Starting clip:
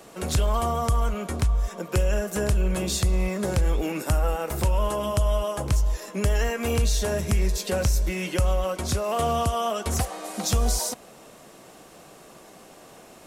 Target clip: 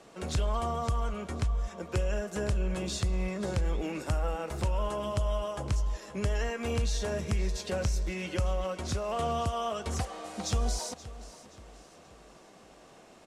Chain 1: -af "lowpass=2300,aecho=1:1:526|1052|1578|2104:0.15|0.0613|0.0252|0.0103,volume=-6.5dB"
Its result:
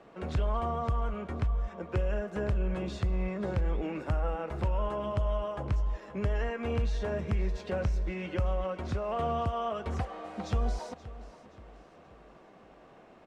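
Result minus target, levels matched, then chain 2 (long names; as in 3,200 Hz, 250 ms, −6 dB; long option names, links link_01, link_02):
8,000 Hz band −16.5 dB
-af "lowpass=7000,aecho=1:1:526|1052|1578|2104:0.15|0.0613|0.0252|0.0103,volume=-6.5dB"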